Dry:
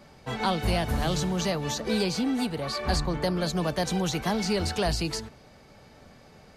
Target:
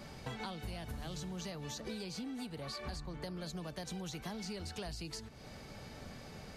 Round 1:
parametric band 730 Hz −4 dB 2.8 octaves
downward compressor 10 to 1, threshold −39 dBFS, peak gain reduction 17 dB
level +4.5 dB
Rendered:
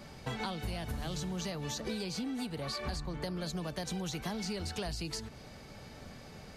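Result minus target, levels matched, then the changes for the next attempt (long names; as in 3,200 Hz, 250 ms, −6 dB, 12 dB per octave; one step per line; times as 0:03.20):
downward compressor: peak gain reduction −5.5 dB
change: downward compressor 10 to 1, threshold −45 dBFS, peak gain reduction 22.5 dB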